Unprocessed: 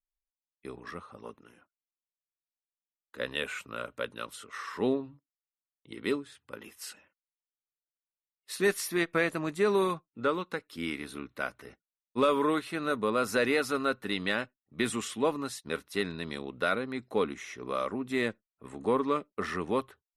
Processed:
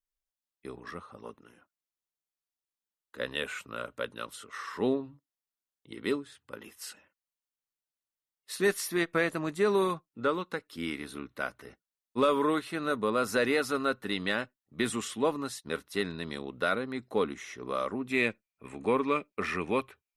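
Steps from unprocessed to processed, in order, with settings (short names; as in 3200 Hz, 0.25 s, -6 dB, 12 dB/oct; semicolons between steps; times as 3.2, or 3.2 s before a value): bell 2400 Hz -3 dB 0.23 oct, from 18.08 s +14.5 dB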